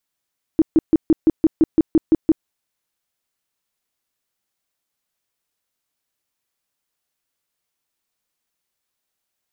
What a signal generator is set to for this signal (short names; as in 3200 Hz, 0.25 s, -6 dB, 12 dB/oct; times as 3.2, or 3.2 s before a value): tone bursts 320 Hz, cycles 9, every 0.17 s, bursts 11, -8.5 dBFS